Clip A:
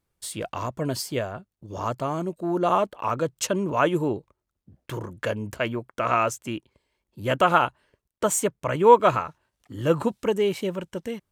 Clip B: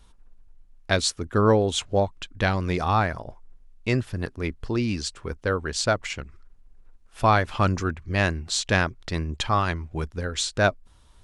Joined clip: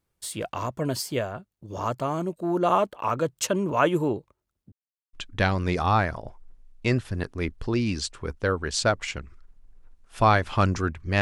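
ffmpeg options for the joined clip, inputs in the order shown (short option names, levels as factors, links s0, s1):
-filter_complex "[0:a]apad=whole_dur=11.21,atrim=end=11.21,asplit=2[s0][s1];[s0]atrim=end=4.72,asetpts=PTS-STARTPTS,afade=t=out:st=4.716:d=0.004:c=hsin[s2];[s1]atrim=start=4.72:end=5.13,asetpts=PTS-STARTPTS,volume=0[s3];[1:a]atrim=start=2.15:end=8.23,asetpts=PTS-STARTPTS,afade=t=in:d=0.004:c=hsin[s4];[s2][s3][s4]concat=n=3:v=0:a=1"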